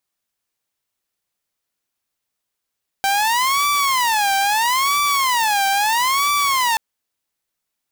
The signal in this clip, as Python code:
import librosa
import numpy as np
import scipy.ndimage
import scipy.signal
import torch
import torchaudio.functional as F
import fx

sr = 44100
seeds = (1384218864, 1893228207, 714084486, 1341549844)

y = fx.siren(sr, length_s=3.73, kind='wail', low_hz=784.0, high_hz=1160.0, per_s=0.76, wave='saw', level_db=-13.0)